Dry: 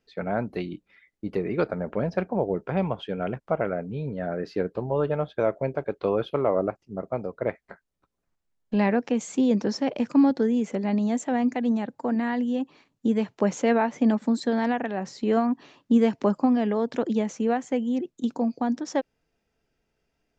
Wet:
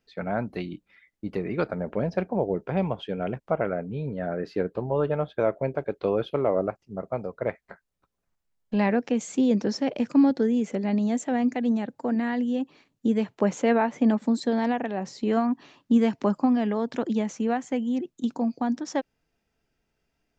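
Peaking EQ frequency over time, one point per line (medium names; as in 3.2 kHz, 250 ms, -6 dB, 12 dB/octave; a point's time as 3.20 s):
peaking EQ -3.5 dB 0.76 oct
420 Hz
from 1.74 s 1.3 kHz
from 3.50 s 5.6 kHz
from 5.79 s 1.1 kHz
from 6.62 s 310 Hz
from 8.90 s 1 kHz
from 13.24 s 5.5 kHz
from 14.20 s 1.5 kHz
from 15.28 s 480 Hz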